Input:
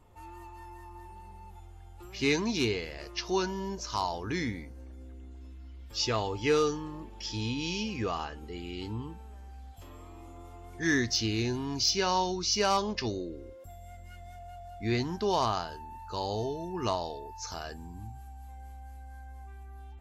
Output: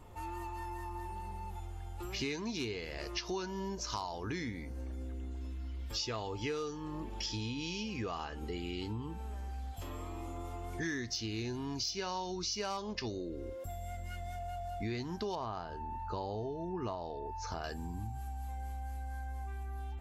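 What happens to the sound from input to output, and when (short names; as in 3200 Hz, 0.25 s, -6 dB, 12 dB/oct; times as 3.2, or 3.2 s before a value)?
15.35–17.64 LPF 1300 Hz 6 dB/oct
whole clip: compressor 6:1, threshold -42 dBFS; gain +6 dB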